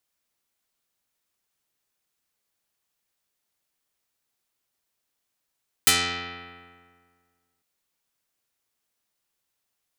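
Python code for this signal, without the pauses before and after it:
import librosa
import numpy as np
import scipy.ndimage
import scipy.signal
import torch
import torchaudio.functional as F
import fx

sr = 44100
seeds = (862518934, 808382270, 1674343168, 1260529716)

y = fx.pluck(sr, length_s=1.75, note=41, decay_s=1.9, pick=0.16, brightness='dark')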